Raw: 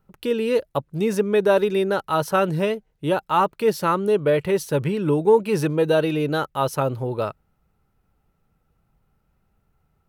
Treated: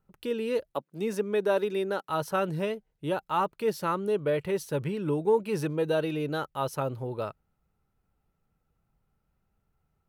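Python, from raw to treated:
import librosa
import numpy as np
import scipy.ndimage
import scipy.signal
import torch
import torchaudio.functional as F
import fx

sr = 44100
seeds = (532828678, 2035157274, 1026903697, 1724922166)

y = fx.highpass(x, sr, hz=190.0, slope=24, at=(0.74, 2.09))
y = y * 10.0 ** (-8.0 / 20.0)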